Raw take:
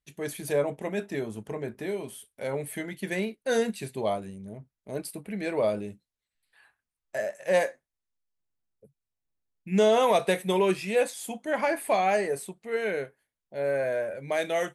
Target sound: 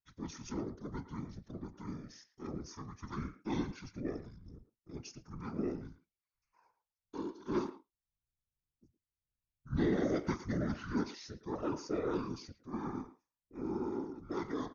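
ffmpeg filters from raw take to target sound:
-filter_complex "[0:a]asetrate=24750,aresample=44100,atempo=1.7818,afftfilt=real='hypot(re,im)*cos(2*PI*random(0))':imag='hypot(re,im)*sin(2*PI*random(1))':win_size=512:overlap=0.75,asplit=2[s0][s1];[s1]adelay=110,highpass=300,lowpass=3400,asoftclip=type=hard:threshold=0.0531,volume=0.224[s2];[s0][s2]amix=inputs=2:normalize=0,volume=0.596"

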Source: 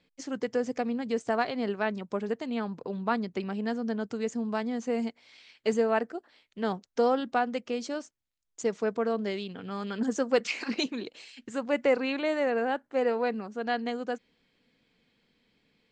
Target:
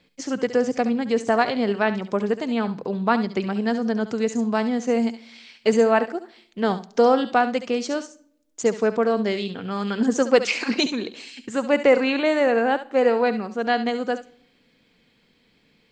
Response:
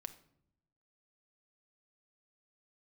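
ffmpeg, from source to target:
-filter_complex "[0:a]asplit=2[s0][s1];[1:a]atrim=start_sample=2205,highshelf=f=3900:g=10.5,adelay=69[s2];[s1][s2]afir=irnorm=-1:irlink=0,volume=0.316[s3];[s0][s3]amix=inputs=2:normalize=0,volume=2.51"

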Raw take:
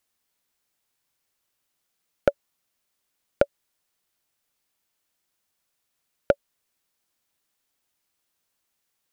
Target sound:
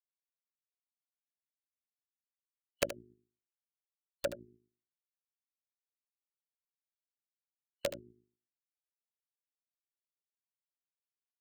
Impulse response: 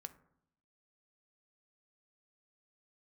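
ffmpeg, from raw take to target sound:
-filter_complex "[0:a]highpass=75,afftfilt=real='re*gte(hypot(re,im),0.0141)':imag='im*gte(hypot(re,im),0.0141)':win_size=1024:overlap=0.75,equalizer=f=1600:w=5.3:g=11.5,bandreject=f=60:t=h:w=6,bandreject=f=120:t=h:w=6,bandreject=f=180:t=h:w=6,bandreject=f=240:t=h:w=6,bandreject=f=300:t=h:w=6,bandreject=f=360:t=h:w=6,atempo=0.8,acompressor=threshold=0.0447:ratio=5,alimiter=limit=0.211:level=0:latency=1:release=73,superequalizer=13b=0.355:16b=3.16,aeval=exprs='(mod(14.1*val(0)+1,2)-1)/14.1':c=same,tremolo=f=52:d=0.824,asplit=2[s0][s1];[s1]aecho=0:1:75:0.251[s2];[s0][s2]amix=inputs=2:normalize=0,volume=2.37"

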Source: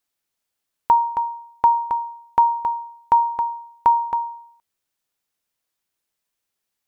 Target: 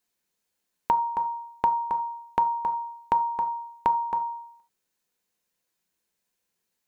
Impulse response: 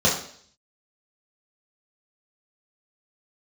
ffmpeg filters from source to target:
-filter_complex "[0:a]bandreject=f=60:t=h:w=6,bandreject=f=120:t=h:w=6,bandreject=f=180:t=h:w=6,asplit=2[s0][s1];[1:a]atrim=start_sample=2205,afade=t=out:st=0.14:d=0.01,atrim=end_sample=6615[s2];[s1][s2]afir=irnorm=-1:irlink=0,volume=0.0891[s3];[s0][s3]amix=inputs=2:normalize=0,acompressor=threshold=0.0447:ratio=2"

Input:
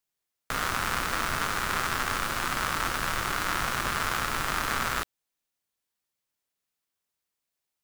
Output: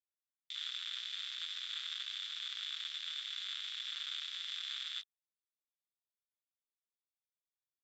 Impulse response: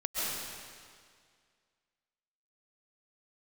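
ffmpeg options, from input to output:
-af "bandpass=f=3500:t=q:w=15:csg=0,afwtdn=0.00251,volume=2.11"

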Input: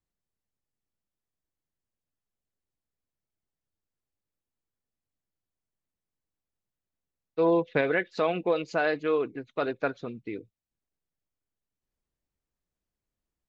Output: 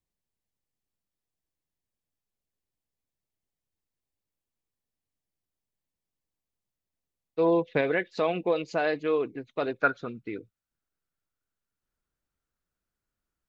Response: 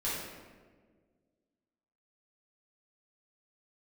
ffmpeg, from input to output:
-af "asetnsamples=n=441:p=0,asendcmd='9.79 equalizer g 11',equalizer=f=1400:t=o:w=0.4:g=-4.5"

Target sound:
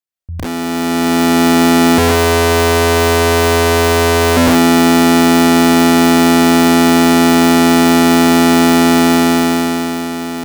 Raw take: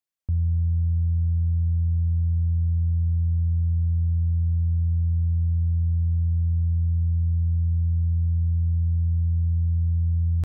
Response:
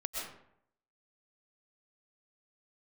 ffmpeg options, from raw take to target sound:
-filter_complex "[0:a]asettb=1/sr,asplit=3[s0][s1][s2];[s0]atrim=end=1.984[s3];[s1]atrim=start=1.98:end=4.37,asetpts=PTS-STARTPTS,afade=t=in:d=0.004:c=qsin,afade=t=out:st=2.386:d=0.004:c=qsin,lowshelf=f=220:g=4.5[s4];[s2]atrim=start=4.366[s5];[s3][s4]acrossfade=d=0.004:c1=hsin:c2=qsin[s6];[s6][s5]acrossfade=d=0.004:c1=qsin:c2=hsin[s7];[1:a]atrim=start_sample=2205,afade=t=out:st=0.22:d=0.01,atrim=end_sample=10143[s8];[s7][s8]afir=irnorm=-1:irlink=0,aeval=exprs='(mod(8.91*val(0)+1,2)-1)/8.91':c=same,dynaudnorm=f=100:g=21:m=4.47"

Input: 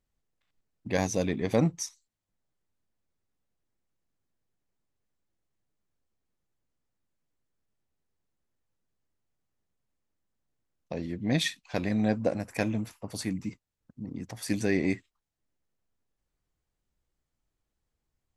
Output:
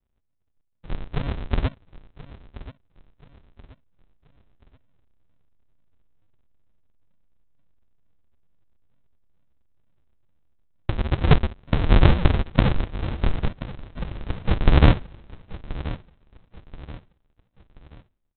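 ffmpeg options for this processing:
-af "dynaudnorm=f=350:g=13:m=4.47,asetrate=70004,aresample=44100,atempo=0.629961,bandreject=f=207:t=h:w=4,bandreject=f=414:t=h:w=4,bandreject=f=621:t=h:w=4,bandreject=f=828:t=h:w=4,bandreject=f=1035:t=h:w=4,bandreject=f=1242:t=h:w=4,bandreject=f=1449:t=h:w=4,bandreject=f=1656:t=h:w=4,bandreject=f=1863:t=h:w=4,bandreject=f=2070:t=h:w=4,bandreject=f=2277:t=h:w=4,bandreject=f=2484:t=h:w=4,bandreject=f=2691:t=h:w=4,bandreject=f=2898:t=h:w=4,bandreject=f=3105:t=h:w=4,aphaser=in_gain=1:out_gain=1:delay=4.1:decay=0.49:speed=0.2:type=triangular,aresample=8000,acrusher=samples=37:mix=1:aa=0.000001:lfo=1:lforange=37:lforate=2.2,aresample=44100,aecho=1:1:1030|2060|3090:0.158|0.0586|0.0217,volume=1.12"

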